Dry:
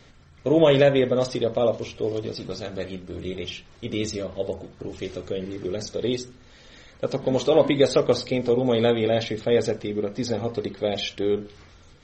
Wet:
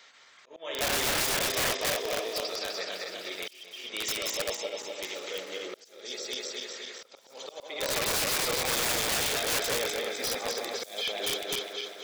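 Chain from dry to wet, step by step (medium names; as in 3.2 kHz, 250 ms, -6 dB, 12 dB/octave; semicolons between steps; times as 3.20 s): backward echo that repeats 127 ms, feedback 77%, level -2 dB; high-pass 980 Hz 12 dB/octave; slow attack 633 ms; integer overflow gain 24.5 dB; feedback echo behind a high-pass 1071 ms, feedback 58%, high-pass 5.2 kHz, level -21 dB; 10.47–11.26 s: three bands compressed up and down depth 100%; trim +2 dB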